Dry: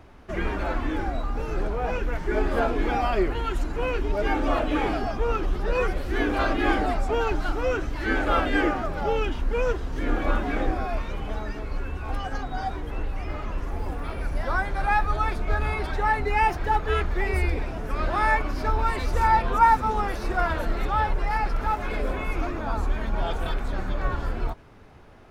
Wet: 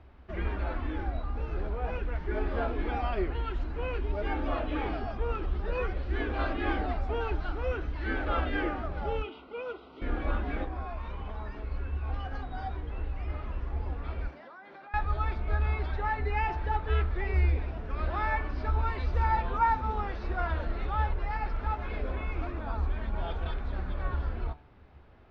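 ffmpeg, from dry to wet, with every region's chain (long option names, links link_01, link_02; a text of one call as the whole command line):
ffmpeg -i in.wav -filter_complex "[0:a]asettb=1/sr,asplit=3[link_01][link_02][link_03];[link_01]atrim=end=9.224[link_04];[link_02]atrim=start=9.22:end=10.02,asetpts=PTS-STARTPTS,afade=type=in:duration=0.004:curve=qsin,afade=type=out:start_time=0.796:duration=0.004:curve=qsin,asuperstop=centerf=1700:order=12:qfactor=4.2,highpass=360,equalizer=frequency=540:width_type=q:width=4:gain=-4,equalizer=frequency=960:width_type=q:width=4:gain=-4,equalizer=frequency=2100:width_type=q:width=4:gain=-6,lowpass=frequency=4600:width=0.5412,lowpass=frequency=4600:width=1.3066[link_05];[link_03]atrim=start=10.016[link_06];[link_04][link_05]acrossfade=duration=0.004:curve1=hsin:curve2=qsin[link_07];[link_07][link_06]acrossfade=duration=0.004:curve1=qsin:curve2=hsin,asettb=1/sr,asplit=3[link_08][link_09][link_10];[link_08]atrim=end=10.644[link_11];[link_09]atrim=start=10.64:end=11.56,asetpts=PTS-STARTPTS,afade=type=in:duration=0.004:curve=qsin,afade=type=out:start_time=0.916:duration=0.004:curve=qsin,equalizer=frequency=1000:width=3.9:gain=9.5,acompressor=threshold=-27dB:ratio=3:attack=3.2:release=140:knee=1:detection=peak[link_12];[link_10]atrim=start=11.556[link_13];[link_11][link_12]acrossfade=duration=0.004:curve1=hsin:curve2=qsin[link_14];[link_14][link_13]acrossfade=duration=0.004:curve1=qsin:curve2=hsin,asettb=1/sr,asplit=3[link_15][link_16][link_17];[link_15]atrim=end=14.284[link_18];[link_16]atrim=start=14.28:end=14.94,asetpts=PTS-STARTPTS,afade=type=in:duration=0.004:curve=qsin,afade=type=out:start_time=0.656:duration=0.004:curve=qsin,highpass=frequency=210:width=0.5412,highpass=frequency=210:width=1.3066,acompressor=threshold=-37dB:ratio=12:attack=3.2:release=140:knee=1:detection=peak[link_19];[link_17]atrim=start=14.936[link_20];[link_18][link_19]acrossfade=duration=0.004:curve1=hsin:curve2=qsin[link_21];[link_21][link_20]acrossfade=duration=0.004:curve1=qsin:curve2=hsin,lowpass=frequency=4300:width=0.5412,lowpass=frequency=4300:width=1.3066,equalizer=frequency=66:width_type=o:width=0.55:gain=11.5,bandreject=frequency=146.5:width_type=h:width=4,bandreject=frequency=293:width_type=h:width=4,bandreject=frequency=439.5:width_type=h:width=4,bandreject=frequency=586:width_type=h:width=4,bandreject=frequency=732.5:width_type=h:width=4,bandreject=frequency=879:width_type=h:width=4,bandreject=frequency=1025.5:width_type=h:width=4,bandreject=frequency=1172:width_type=h:width=4,bandreject=frequency=1318.5:width_type=h:width=4,bandreject=frequency=1465:width_type=h:width=4,bandreject=frequency=1611.5:width_type=h:width=4,bandreject=frequency=1758:width_type=h:width=4,bandreject=frequency=1904.5:width_type=h:width=4,bandreject=frequency=2051:width_type=h:width=4,bandreject=frequency=2197.5:width_type=h:width=4,bandreject=frequency=2344:width_type=h:width=4,bandreject=frequency=2490.5:width_type=h:width=4,bandreject=frequency=2637:width_type=h:width=4,bandreject=frequency=2783.5:width_type=h:width=4,bandreject=frequency=2930:width_type=h:width=4,bandreject=frequency=3076.5:width_type=h:width=4,bandreject=frequency=3223:width_type=h:width=4,bandreject=frequency=3369.5:width_type=h:width=4,bandreject=frequency=3516:width_type=h:width=4,bandreject=frequency=3662.5:width_type=h:width=4,bandreject=frequency=3809:width_type=h:width=4,bandreject=frequency=3955.5:width_type=h:width=4,bandreject=frequency=4102:width_type=h:width=4,bandreject=frequency=4248.5:width_type=h:width=4,bandreject=frequency=4395:width_type=h:width=4,volume=-8dB" out.wav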